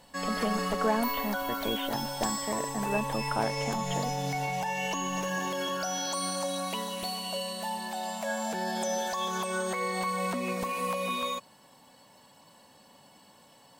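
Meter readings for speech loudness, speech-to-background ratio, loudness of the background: −34.5 LKFS, −2.5 dB, −32.0 LKFS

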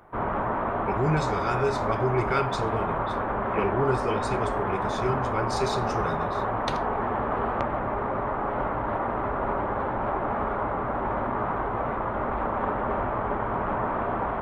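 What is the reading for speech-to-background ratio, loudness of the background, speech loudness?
−2.0 dB, −28.0 LKFS, −30.0 LKFS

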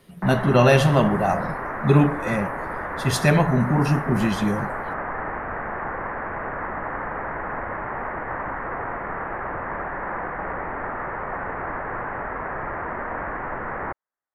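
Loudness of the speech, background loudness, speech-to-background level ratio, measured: −20.5 LKFS, −29.5 LKFS, 9.0 dB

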